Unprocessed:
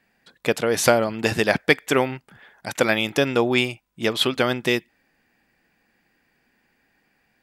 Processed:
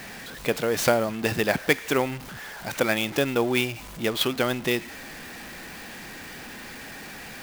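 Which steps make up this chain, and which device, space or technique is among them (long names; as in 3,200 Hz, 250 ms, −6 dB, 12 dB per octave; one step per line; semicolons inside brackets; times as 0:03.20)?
early CD player with a faulty converter (converter with a step at zero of −29.5 dBFS; converter with an unsteady clock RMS 0.02 ms)
level −4.5 dB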